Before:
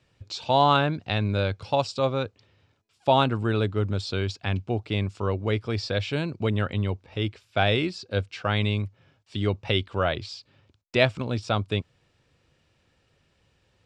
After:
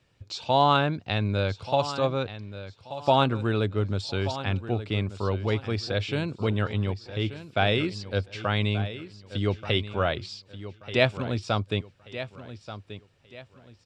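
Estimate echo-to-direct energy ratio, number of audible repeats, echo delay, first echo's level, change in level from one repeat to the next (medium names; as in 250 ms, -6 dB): -12.5 dB, 3, 1182 ms, -13.0 dB, -10.0 dB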